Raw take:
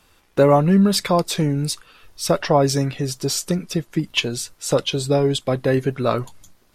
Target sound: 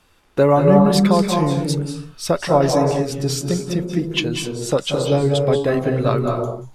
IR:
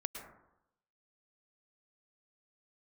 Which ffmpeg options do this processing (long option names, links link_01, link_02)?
-filter_complex "[0:a]highshelf=frequency=5100:gain=-4.5[link_01];[1:a]atrim=start_sample=2205,afade=type=out:start_time=0.31:duration=0.01,atrim=end_sample=14112,asetrate=25137,aresample=44100[link_02];[link_01][link_02]afir=irnorm=-1:irlink=0,volume=-1dB"